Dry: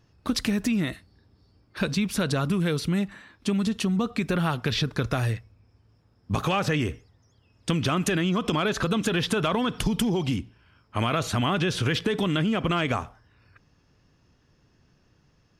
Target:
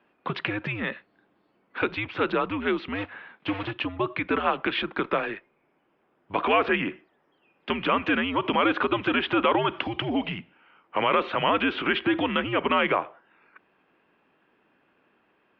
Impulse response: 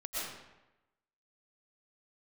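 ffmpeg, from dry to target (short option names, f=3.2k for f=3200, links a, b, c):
-filter_complex "[0:a]asettb=1/sr,asplit=3[a][b][c];[a]atrim=end=2.954[d];[b]atrim=start=2.95:end=3.71,asetpts=PTS-STARTPTS,afade=t=in:d=0.004:c=qsin,afade=t=out:st=0.756:d=0.004:c=qsin,acrusher=bits=3:mode=log:mix=0:aa=0.000001[e];[c]atrim=start=3.706[f];[d][e]acrossfade=d=0.004:c1=hsin:c2=qsin[g];[g][f]acrossfade=d=0.004:c1=qsin:c2=hsin,highpass=f=370:t=q:w=0.5412,highpass=f=370:t=q:w=1.307,lowpass=f=3.1k:t=q:w=0.5176,lowpass=f=3.1k:t=q:w=0.7071,lowpass=f=3.1k:t=q:w=1.932,afreqshift=-100,volume=5dB"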